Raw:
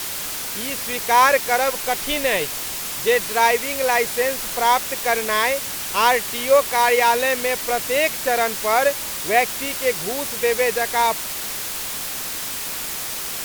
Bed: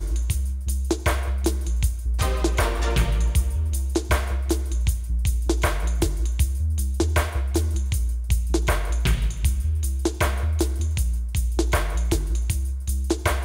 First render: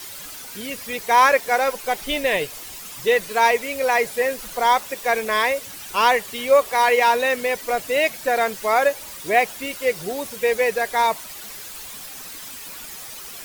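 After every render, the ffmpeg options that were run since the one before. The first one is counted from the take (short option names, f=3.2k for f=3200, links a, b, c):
-af "afftdn=nr=11:nf=-29"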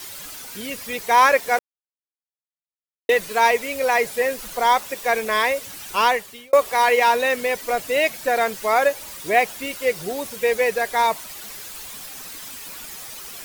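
-filter_complex "[0:a]asplit=4[a][b][c][d];[a]atrim=end=1.59,asetpts=PTS-STARTPTS,afade=t=out:st=1.586:d=0.004:c=hsin[e];[b]atrim=start=1.59:end=3.09,asetpts=PTS-STARTPTS,volume=0[f];[c]atrim=start=3.09:end=6.53,asetpts=PTS-STARTPTS,afade=t=in:d=0.004:c=hsin,afade=t=out:st=2.91:d=0.53[g];[d]atrim=start=6.53,asetpts=PTS-STARTPTS,afade=t=in:d=0.004:c=hsin[h];[e][f][g][h]concat=n=4:v=0:a=1"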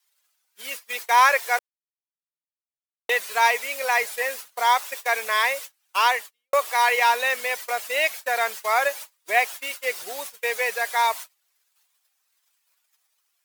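-af "agate=range=-36dB:threshold=-31dB:ratio=16:detection=peak,highpass=820"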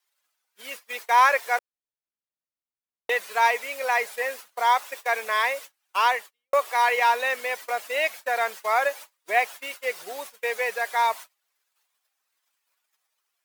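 -af "highshelf=f=2.7k:g=-7.5"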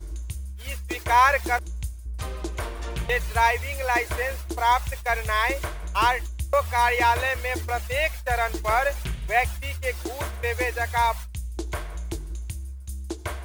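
-filter_complex "[1:a]volume=-9.5dB[a];[0:a][a]amix=inputs=2:normalize=0"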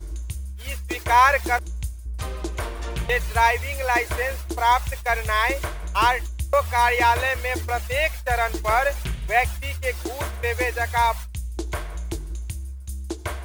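-af "volume=2dB"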